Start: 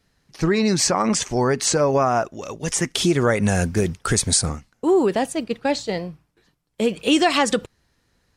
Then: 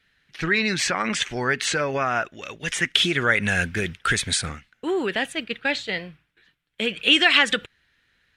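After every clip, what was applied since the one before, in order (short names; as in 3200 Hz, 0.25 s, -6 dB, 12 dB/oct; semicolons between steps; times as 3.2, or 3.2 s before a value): band shelf 2300 Hz +15 dB; gain -7.5 dB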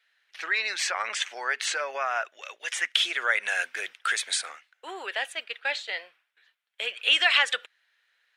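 HPF 580 Hz 24 dB/oct; gain -4 dB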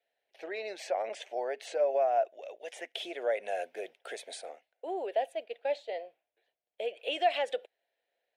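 EQ curve 160 Hz 0 dB, 680 Hz +9 dB, 1200 Hz -23 dB, 2400 Hz -15 dB, 7600 Hz -19 dB, 13000 Hz -11 dB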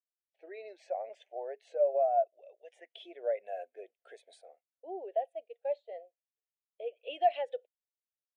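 spectral expander 1.5:1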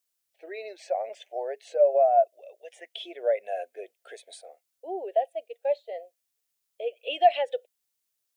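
high shelf 3300 Hz +10.5 dB; gain +7 dB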